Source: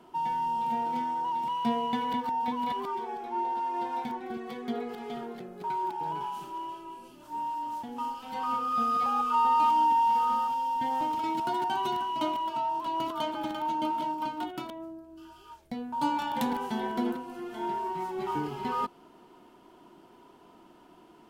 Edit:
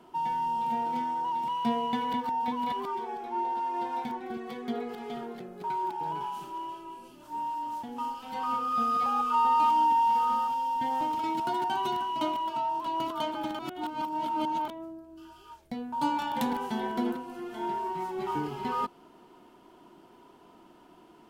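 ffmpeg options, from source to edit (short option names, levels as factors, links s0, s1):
-filter_complex "[0:a]asplit=3[s0][s1][s2];[s0]atrim=end=13.592[s3];[s1]atrim=start=13.588:end=14.682,asetpts=PTS-STARTPTS,areverse[s4];[s2]atrim=start=14.678[s5];[s3][s4]acrossfade=d=0.004:c1=hsin:c2=hsin[s6];[s6][s5]acrossfade=d=0.004:c1=hsin:c2=hsin"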